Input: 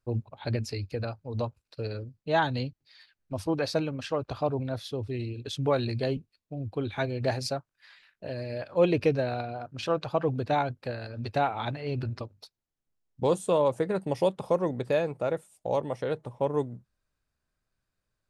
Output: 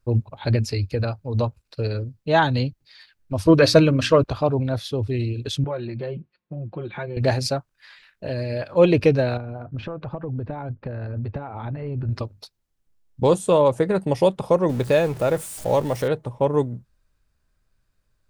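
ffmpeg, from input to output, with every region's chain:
-filter_complex "[0:a]asettb=1/sr,asplit=3[a][b][c];[a]atrim=end=3.454[d];[b]atrim=start=3.45:end=4.24,asetpts=PTS-STARTPTS,afade=t=in:d=0.004:c=qsin,afade=t=out:st=0.786:d=0.004:c=qsin,asuperstop=centerf=810:order=4:qfactor=4,bandreject=f=60:t=h:w=6,bandreject=f=120:t=h:w=6,bandreject=f=180:t=h:w=6,bandreject=f=240:t=h:w=6,bandreject=f=300:t=h:w=6,bandreject=f=360:t=h:w=6,acontrast=82[e];[c]atrim=start=4.236[f];[d][e]acrossfade=d=0.004:c1=hsin:c2=qsin[g];[g][f]acrossfade=d=0.004:c1=qsin:c2=hsin,asettb=1/sr,asplit=3[h][i][j];[h]atrim=end=5.644[k];[i]atrim=start=5.64:end=7.17,asetpts=PTS-STARTPTS,afade=t=in:d=0.004:c=qsin,afade=t=out:st=1.526:d=0.004:c=qsin,aecho=1:1:5.6:0.84,atrim=end_sample=67473,acompressor=threshold=-38dB:ratio=2.5:attack=3.2:release=140:knee=1:detection=peak,highpass=110,lowpass=2.3k[l];[j]atrim=start=7.166[m];[k][l]acrossfade=d=0.004:c1=hsin:c2=qsin[n];[n][m]acrossfade=d=0.004:c1=qsin:c2=hsin,asettb=1/sr,asplit=3[o][p][q];[o]atrim=end=9.374[r];[p]atrim=start=9.37:end=12.09,asetpts=PTS-STARTPTS,afade=t=in:d=0.004:c=qsin,afade=t=out:st=2.716:d=0.004:c=qsin,lowpass=1.7k,acompressor=threshold=-39dB:ratio=5:attack=3.2:release=140:knee=1:detection=peak,lowshelf=f=340:g=6[s];[q]atrim=start=12.086[t];[r][s]acrossfade=d=0.004:c1=hsin:c2=qsin[u];[u][t]acrossfade=d=0.004:c1=qsin:c2=hsin,asettb=1/sr,asplit=3[v][w][x];[v]atrim=end=14.694[y];[w]atrim=start=14.69:end=16.08,asetpts=PTS-STARTPTS,afade=t=in:d=0.004:c=qsin,afade=t=out:st=1.386:d=0.004:c=qsin,aeval=exprs='val(0)+0.5*0.00794*sgn(val(0))':c=same,highshelf=f=7k:g=6[z];[x]atrim=start=16.076[aa];[y][z]acrossfade=d=0.004:c1=hsin:c2=qsin[ab];[ab][aa]acrossfade=d=0.004:c1=qsin:c2=hsin,lowshelf=f=75:g=10.5,bandreject=f=720:w=19,volume=7dB"

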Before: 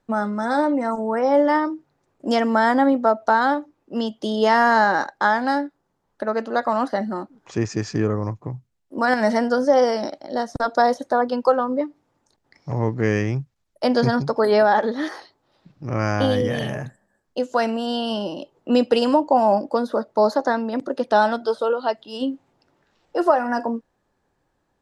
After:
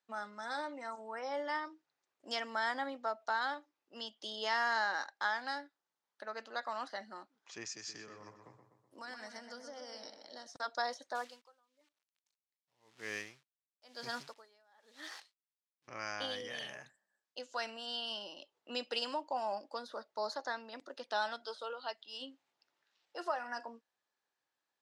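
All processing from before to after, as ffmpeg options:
-filter_complex "[0:a]asettb=1/sr,asplit=3[a][b][c];[a]atrim=end=7.664[d];[b]atrim=start=7.66:end=10.47,asetpts=PTS-STARTPTS,afade=t=in:d=0.004:c=qsin,afade=t=out:st=2.806:d=0.004:c=qsin,highshelf=f=5.9k:g=11,acrossover=split=120|330[e][f][g];[e]acompressor=threshold=-33dB:ratio=4[h];[f]acompressor=threshold=-31dB:ratio=4[i];[g]acompressor=threshold=-32dB:ratio=4[j];[h][i][j]amix=inputs=3:normalize=0,asplit=2[k][l];[l]adelay=125,lowpass=f=2.9k:p=1,volume=-7dB,asplit=2[m][n];[n]adelay=125,lowpass=f=2.9k:p=1,volume=0.55,asplit=2[o][p];[p]adelay=125,lowpass=f=2.9k:p=1,volume=0.55,asplit=2[q][r];[r]adelay=125,lowpass=f=2.9k:p=1,volume=0.55,asplit=2[s][t];[t]adelay=125,lowpass=f=2.9k:p=1,volume=0.55,asplit=2[u][v];[v]adelay=125,lowpass=f=2.9k:p=1,volume=0.55,asplit=2[w][x];[x]adelay=125,lowpass=f=2.9k:p=1,volume=0.55[y];[k][m][o][q][s][u][w][y]amix=inputs=8:normalize=0,atrim=end_sample=123921[z];[c]atrim=start=10.466[aa];[d][z]acrossfade=d=0.004:c1=hsin:c2=qsin[ab];[ab][aa]acrossfade=d=0.004:c1=qsin:c2=hsin,asettb=1/sr,asplit=3[ac][ad][ae];[ac]atrim=end=11.154[af];[ad]atrim=start=11.15:end=15.88,asetpts=PTS-STARTPTS,afade=t=in:d=0.004:c=qsin,afade=t=out:st=4.726:d=0.004:c=qsin,acrusher=bits=7:dc=4:mix=0:aa=0.000001,aeval=exprs='val(0)*pow(10,-36*(0.5-0.5*cos(2*PI*1*n/s))/20)':c=same[ag];[ae]atrim=start=15.876[ah];[af][ag]acrossfade=d=0.004:c1=hsin:c2=qsin[ai];[ai][ah]acrossfade=d=0.004:c1=qsin:c2=hsin,lowpass=4.3k,aderivative"

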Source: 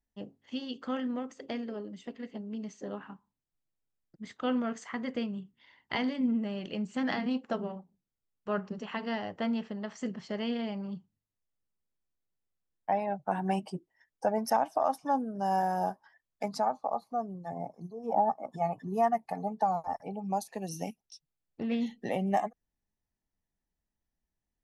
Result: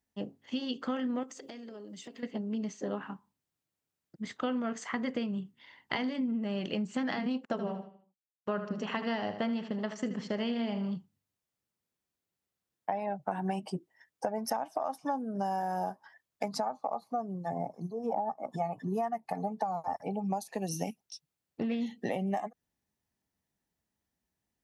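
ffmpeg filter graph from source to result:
-filter_complex "[0:a]asettb=1/sr,asplit=3[a][b][c];[a]atrim=end=1.234[d];[b]atrim=start=1.23:end=2.23,asetpts=PTS-STARTPTS,afade=t=in:d=0.004:c=qsin,afade=t=out:st=0.996:d=0.004:c=qsin,bass=f=250:g=-3,treble=f=4k:g=10,acompressor=threshold=-47dB:ratio=10:attack=3.2:release=140:knee=1:detection=peak[e];[c]atrim=start=2.226[f];[d][e]acrossfade=d=0.004:c1=hsin:c2=qsin[g];[g][f]acrossfade=d=0.004:c1=qsin:c2=hsin,asettb=1/sr,asplit=3[h][i][j];[h]atrim=end=7.454[k];[i]atrim=start=7.45:end=10.96,asetpts=PTS-STARTPTS,afade=t=in:d=0.004:c=qsin,afade=t=out:st=3.506:d=0.004:c=qsin,agate=range=-23dB:threshold=-51dB:ratio=16:release=100:detection=peak,aecho=1:1:77|154|231|308:0.266|0.109|0.0447|0.0183,atrim=end_sample=154791[l];[j]atrim=start=10.956[m];[k][l]acrossfade=d=0.004:c1=hsin:c2=qsin[n];[n][m]acrossfade=d=0.004:c1=qsin:c2=hsin,acompressor=threshold=-34dB:ratio=10,highpass=86,volume=5dB"

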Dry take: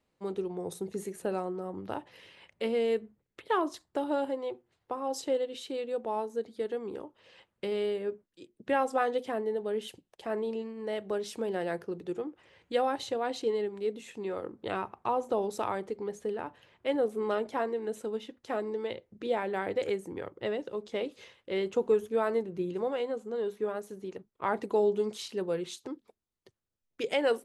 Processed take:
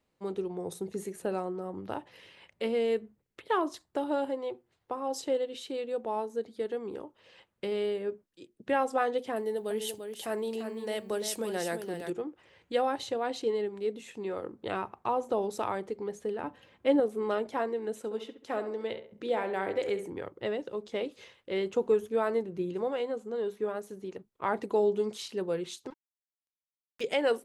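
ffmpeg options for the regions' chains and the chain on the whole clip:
-filter_complex "[0:a]asettb=1/sr,asplit=3[a][b][c];[a]atrim=end=9.364[d];[b]atrim=start=9.36:end=12.1,asetpts=PTS-STARTPTS,afade=t=in:d=0.004:c=qsin,afade=t=out:st=2.736:d=0.004:c=qsin,aemphasis=mode=production:type=75fm,aecho=1:1:343:0.422,atrim=end_sample=120834[e];[c]atrim=start=12.096[f];[d][e]acrossfade=d=0.004:c1=hsin:c2=qsin[g];[g][f]acrossfade=d=0.004:c1=qsin:c2=hsin,asettb=1/sr,asplit=3[h][i][j];[h]atrim=end=16.434[k];[i]atrim=start=16.43:end=17,asetpts=PTS-STARTPTS,afade=t=in:d=0.004:c=qsin,afade=t=out:st=0.566:d=0.004:c=qsin,highpass=f=150:p=1,lowshelf=f=270:g=11.5,aecho=1:1:3.8:0.43,atrim=end_sample=25137[l];[j]atrim=start=16.996[m];[k][l]acrossfade=d=0.004:c1=hsin:c2=qsin[n];[n][m]acrossfade=d=0.004:c1=qsin:c2=hsin,asettb=1/sr,asplit=3[o][p][q];[o]atrim=end=17.974[r];[p]atrim=start=17.97:end=20.1,asetpts=PTS-STARTPTS,afade=t=in:d=0.004:c=qsin,afade=t=out:st=2.126:d=0.004:c=qsin,lowshelf=f=130:g=-6,asplit=2[s][t];[t]adelay=68,lowpass=f=2.4k:p=1,volume=-9dB,asplit=2[u][v];[v]adelay=68,lowpass=f=2.4k:p=1,volume=0.4,asplit=2[w][x];[x]adelay=68,lowpass=f=2.4k:p=1,volume=0.4,asplit=2[y][z];[z]adelay=68,lowpass=f=2.4k:p=1,volume=0.4[aa];[s][u][w][y][aa]amix=inputs=5:normalize=0,atrim=end_sample=93933[ab];[q]atrim=start=20.096[ac];[r][ab]acrossfade=d=0.004:c1=hsin:c2=qsin[ad];[ad][ac]acrossfade=d=0.004:c1=qsin:c2=hsin,asettb=1/sr,asplit=3[ae][af][ag];[ae]atrim=end=25.904[ah];[af]atrim=start=25.9:end=27.01,asetpts=PTS-STARTPTS,afade=t=in:d=0.004:c=qsin,afade=t=out:st=1.106:d=0.004:c=qsin,highpass=f=1.1k:p=1,acrusher=bits=6:mix=0:aa=0.5[ai];[ag]atrim=start=27.006[aj];[ah][ai]acrossfade=d=0.004:c1=hsin:c2=qsin[ak];[ak][aj]acrossfade=d=0.004:c1=qsin:c2=hsin"

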